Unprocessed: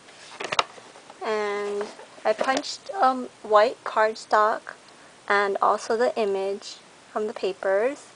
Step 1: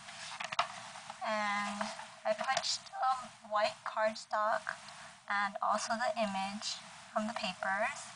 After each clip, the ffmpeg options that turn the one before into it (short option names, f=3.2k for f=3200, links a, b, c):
-af "afftfilt=real='re*(1-between(b*sr/4096,230,630))':imag='im*(1-between(b*sr/4096,230,630))':win_size=4096:overlap=0.75,areverse,acompressor=threshold=-30dB:ratio=6,areverse"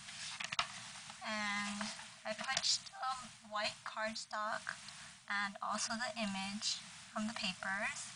-af "equalizer=f=690:t=o:w=2.1:g=-13,volume=2dB"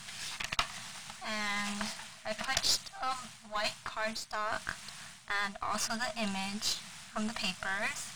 -af "aeval=exprs='if(lt(val(0),0),0.447*val(0),val(0))':c=same,volume=7.5dB"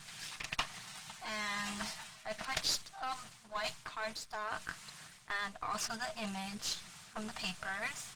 -af "aecho=1:1:6.6:0.37,volume=-3.5dB" -ar 48000 -c:a libopus -b:a 16k